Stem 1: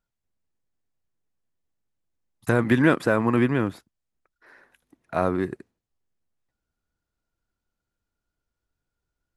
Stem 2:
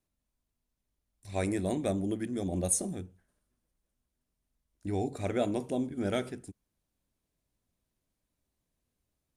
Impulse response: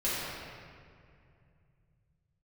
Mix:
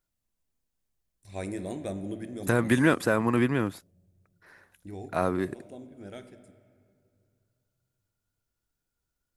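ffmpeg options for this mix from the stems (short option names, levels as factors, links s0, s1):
-filter_complex "[0:a]highshelf=f=5300:g=10.5,volume=0.668,asplit=2[s0][s1];[1:a]volume=0.562,afade=t=out:st=4.58:d=0.57:silence=0.398107,asplit=2[s2][s3];[s3]volume=0.112[s4];[s1]apad=whole_len=413021[s5];[s2][s5]sidechaincompress=threshold=0.01:ratio=8:attack=28:release=138[s6];[2:a]atrim=start_sample=2205[s7];[s4][s7]afir=irnorm=-1:irlink=0[s8];[s0][s6][s8]amix=inputs=3:normalize=0"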